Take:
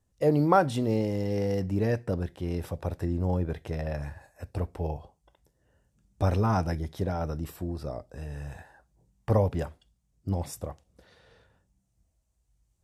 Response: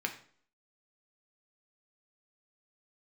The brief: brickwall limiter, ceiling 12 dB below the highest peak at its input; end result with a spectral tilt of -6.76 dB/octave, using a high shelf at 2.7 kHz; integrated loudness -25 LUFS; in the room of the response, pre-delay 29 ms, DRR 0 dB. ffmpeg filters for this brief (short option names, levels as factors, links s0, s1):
-filter_complex "[0:a]highshelf=f=2700:g=7.5,alimiter=limit=0.106:level=0:latency=1,asplit=2[s0][s1];[1:a]atrim=start_sample=2205,adelay=29[s2];[s1][s2]afir=irnorm=-1:irlink=0,volume=0.596[s3];[s0][s3]amix=inputs=2:normalize=0,volume=1.78"